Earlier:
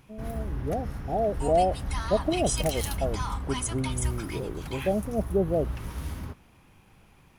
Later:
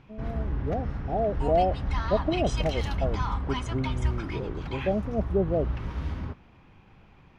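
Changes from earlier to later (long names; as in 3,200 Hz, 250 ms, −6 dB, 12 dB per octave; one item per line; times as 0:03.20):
background +3.0 dB
master: add high-frequency loss of the air 200 metres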